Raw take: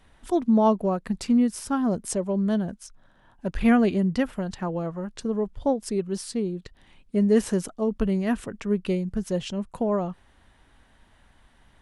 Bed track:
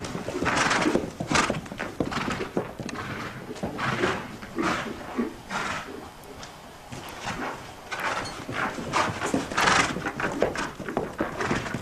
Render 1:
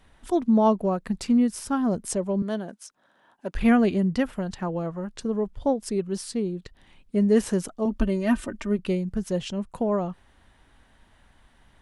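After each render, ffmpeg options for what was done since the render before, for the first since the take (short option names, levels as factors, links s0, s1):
-filter_complex "[0:a]asettb=1/sr,asplit=3[s0][s1][s2];[s0]atrim=end=2.424[s3];[s1]atrim=start=2.42:end=3.55,asetpts=PTS-STARTPTS,afade=t=in:d=0.004:c=qsin,afade=t=out:st=1.126:d=0.004:c=qsin,highpass=300[s4];[s2]atrim=start=3.546[s5];[s3][s4]acrossfade=d=0.004:c1=hsin:c2=qsin[s6];[s6][s5]acrossfade=d=0.004:c1=qsin:c2=hsin,asettb=1/sr,asplit=3[s7][s8][s9];[s7]atrim=end=7.854[s10];[s8]atrim=start=7.85:end=8.79,asetpts=PTS-STARTPTS,afade=t=in:d=0.004:c=qsin,afade=t=out:st=0.936:d=0.004:c=qsin,aecho=1:1:3.3:0.87,atrim=end_sample=41454[s11];[s9]atrim=start=8.786[s12];[s10][s11]acrossfade=d=0.004:c1=hsin:c2=qsin[s13];[s13][s12]acrossfade=d=0.004:c1=qsin:c2=hsin"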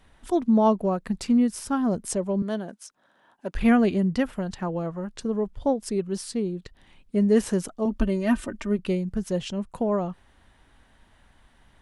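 -af anull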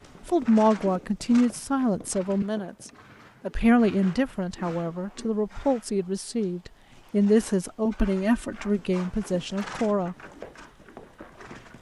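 -filter_complex "[1:a]volume=0.15[s0];[0:a][s0]amix=inputs=2:normalize=0"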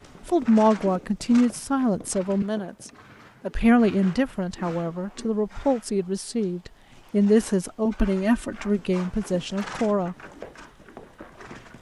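-af "volume=1.19"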